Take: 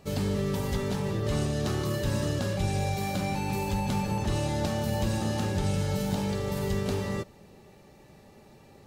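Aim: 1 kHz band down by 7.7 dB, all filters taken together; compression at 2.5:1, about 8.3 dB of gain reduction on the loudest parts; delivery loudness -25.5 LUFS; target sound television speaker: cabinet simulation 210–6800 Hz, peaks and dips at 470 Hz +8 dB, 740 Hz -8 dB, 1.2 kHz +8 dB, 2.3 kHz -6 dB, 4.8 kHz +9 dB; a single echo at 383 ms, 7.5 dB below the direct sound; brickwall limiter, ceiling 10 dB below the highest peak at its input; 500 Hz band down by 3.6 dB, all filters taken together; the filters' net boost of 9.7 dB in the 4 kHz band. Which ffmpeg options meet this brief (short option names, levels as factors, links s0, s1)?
-af "equalizer=f=500:t=o:g=-6.5,equalizer=f=1000:t=o:g=-8,equalizer=f=4000:t=o:g=8,acompressor=threshold=0.0141:ratio=2.5,alimiter=level_in=2.11:limit=0.0631:level=0:latency=1,volume=0.473,highpass=f=210:w=0.5412,highpass=f=210:w=1.3066,equalizer=f=470:t=q:w=4:g=8,equalizer=f=740:t=q:w=4:g=-8,equalizer=f=1200:t=q:w=4:g=8,equalizer=f=2300:t=q:w=4:g=-6,equalizer=f=4800:t=q:w=4:g=9,lowpass=f=6800:w=0.5412,lowpass=f=6800:w=1.3066,aecho=1:1:383:0.422,volume=5.31"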